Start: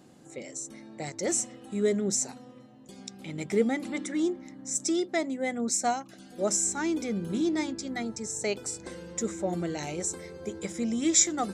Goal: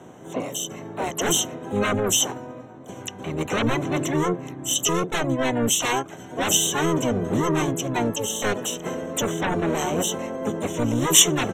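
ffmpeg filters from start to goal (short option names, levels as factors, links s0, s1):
-filter_complex "[0:a]lowpass=f=6100:t=q:w=10,acrossover=split=270|1800[s0][s1][s2];[s1]aeval=exprs='0.158*sin(PI/2*5.62*val(0)/0.158)':c=same[s3];[s0][s3][s2]amix=inputs=3:normalize=0,asplit=4[s4][s5][s6][s7];[s5]asetrate=22050,aresample=44100,atempo=2,volume=0.794[s8];[s6]asetrate=55563,aresample=44100,atempo=0.793701,volume=0.708[s9];[s7]asetrate=88200,aresample=44100,atempo=0.5,volume=0.282[s10];[s4][s8][s9][s10]amix=inputs=4:normalize=0,asuperstop=centerf=4800:order=4:qfactor=3,volume=0.447"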